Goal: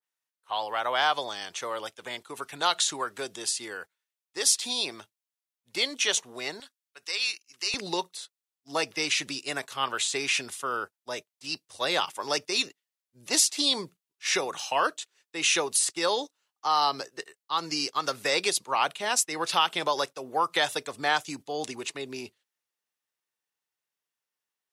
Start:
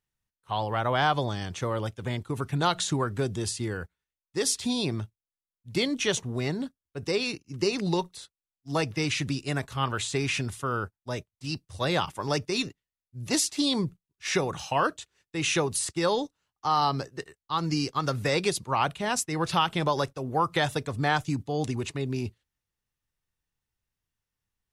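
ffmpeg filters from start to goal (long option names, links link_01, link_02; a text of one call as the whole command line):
ffmpeg -i in.wav -af "asetnsamples=nb_out_samples=441:pad=0,asendcmd='6.6 highpass f 1400;7.74 highpass f 420',highpass=570,adynamicequalizer=threshold=0.00794:dfrequency=2200:dqfactor=0.7:tfrequency=2200:tqfactor=0.7:attack=5:release=100:ratio=0.375:range=2.5:mode=boostabove:tftype=highshelf" out.wav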